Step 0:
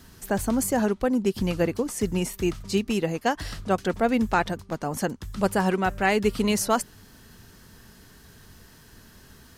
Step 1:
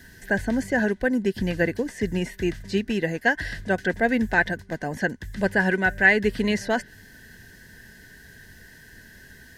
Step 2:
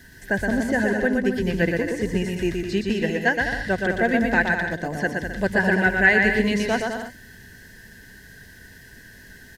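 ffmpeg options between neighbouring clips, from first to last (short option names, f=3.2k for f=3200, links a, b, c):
-filter_complex "[0:a]acrossover=split=5000[a][b];[b]acompressor=threshold=-50dB:ratio=4:attack=1:release=60[c];[a][c]amix=inputs=2:normalize=0,superequalizer=9b=0.631:10b=0.251:11b=3.55"
-af "aecho=1:1:120|204|262.8|304|332.8:0.631|0.398|0.251|0.158|0.1"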